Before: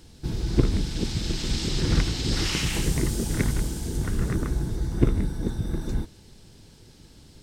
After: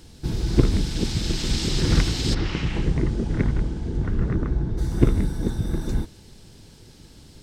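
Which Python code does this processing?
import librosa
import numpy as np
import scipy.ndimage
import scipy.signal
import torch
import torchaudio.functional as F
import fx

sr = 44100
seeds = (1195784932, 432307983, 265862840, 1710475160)

y = fx.spacing_loss(x, sr, db_at_10k=29, at=(2.33, 4.77), fade=0.02)
y = F.gain(torch.from_numpy(y), 3.0).numpy()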